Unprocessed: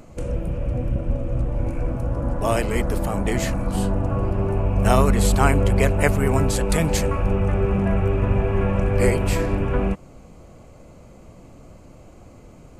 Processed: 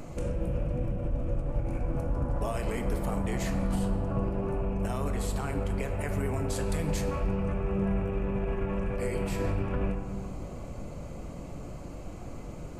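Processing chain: compression, threshold -28 dBFS, peak gain reduction 16 dB; peak limiter -25.5 dBFS, peak gain reduction 9.5 dB; reverberation RT60 2.6 s, pre-delay 6 ms, DRR 4.5 dB; trim +2 dB

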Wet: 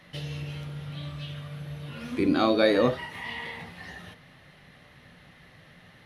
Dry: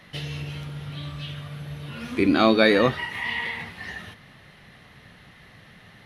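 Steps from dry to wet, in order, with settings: on a send at -11.5 dB: resonant low shelf 790 Hz +6.5 dB, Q 3 + reverberation, pre-delay 3 ms; on the sum: dynamic bell 2.2 kHz, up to -5 dB, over -40 dBFS, Q 1.2; trim -4 dB

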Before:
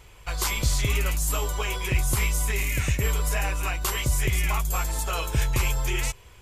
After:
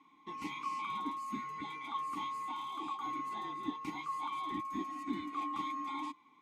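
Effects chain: split-band scrambler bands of 1 kHz; vowel filter u; peaking EQ 190 Hz +8.5 dB 0.97 oct; trim +1 dB

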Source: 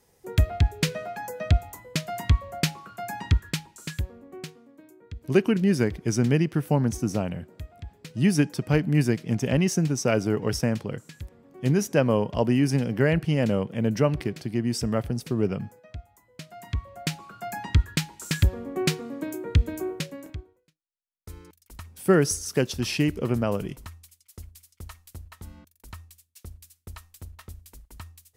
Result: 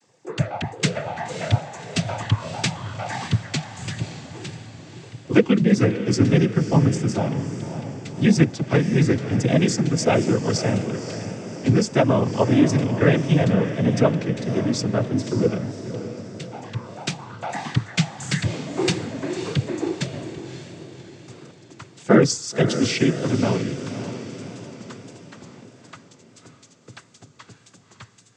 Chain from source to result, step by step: noise-vocoded speech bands 16; echo that smears into a reverb 568 ms, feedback 51%, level -10 dB; vibrato 1.6 Hz 41 cents; trim +4.5 dB

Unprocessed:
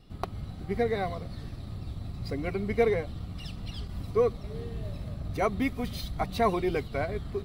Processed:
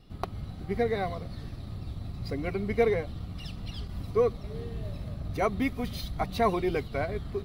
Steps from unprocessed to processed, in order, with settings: peaking EQ 8 kHz -4 dB 0.28 oct

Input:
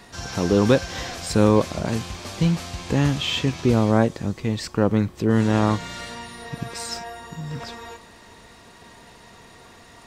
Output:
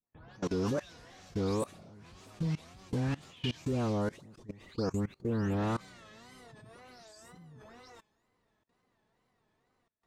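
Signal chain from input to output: delay that grows with frequency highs late, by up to 327 ms; gate with hold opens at -38 dBFS; wow and flutter 150 cents; level held to a coarse grid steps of 22 dB; tape noise reduction on one side only decoder only; trim -8.5 dB

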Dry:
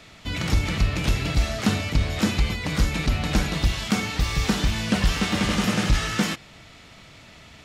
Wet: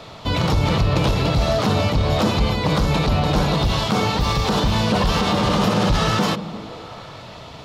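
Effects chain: graphic EQ 125/500/1000/2000/4000/8000 Hz +7/+9/+11/-6/+6/-5 dB; peak limiter -14 dBFS, peak gain reduction 10 dB; on a send: repeats whose band climbs or falls 171 ms, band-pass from 160 Hz, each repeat 0.7 oct, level -7 dB; on the sum: trim +4 dB

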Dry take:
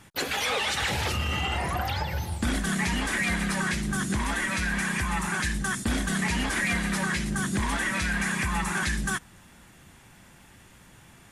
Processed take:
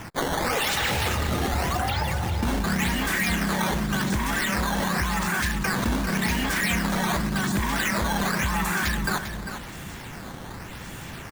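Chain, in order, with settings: steep low-pass 11 kHz 72 dB/octave; in parallel at +2 dB: compressor with a negative ratio -39 dBFS, ratio -1; on the sum: decimation with a swept rate 10×, swing 160% 0.89 Hz; delay 398 ms -10 dB

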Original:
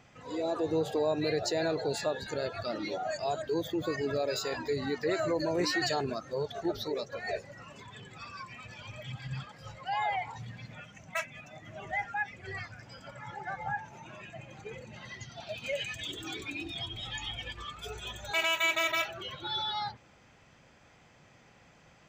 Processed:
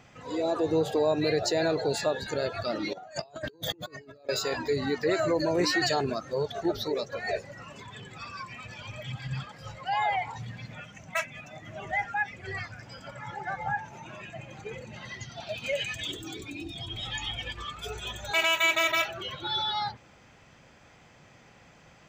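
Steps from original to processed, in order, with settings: 2.93–4.29 s: compressor with a negative ratio -43 dBFS, ratio -0.5; 16.17–16.88 s: peaking EQ 1.7 kHz -9 dB 2.8 oct; trim +4 dB

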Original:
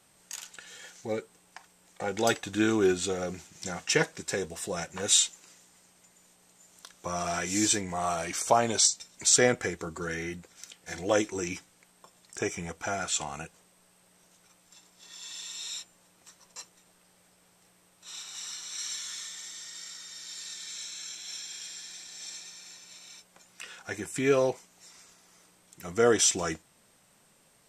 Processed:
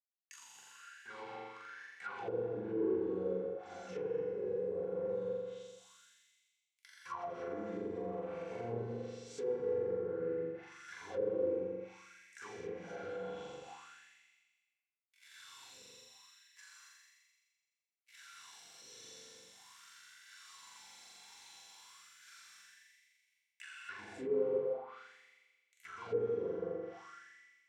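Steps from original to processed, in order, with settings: fuzz box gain 33 dB, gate -39 dBFS; amplifier tone stack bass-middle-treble 6-0-2; flutter echo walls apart 7.3 m, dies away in 1.4 s; gated-style reverb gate 300 ms flat, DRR -7 dB; auto-wah 490–2200 Hz, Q 6.4, down, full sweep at -26 dBFS; comb of notches 620 Hz; low-pass that closes with the level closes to 1.1 kHz, closed at -42.5 dBFS; treble shelf 8.4 kHz +12 dB, from 25.86 s +4 dB; trim +6.5 dB

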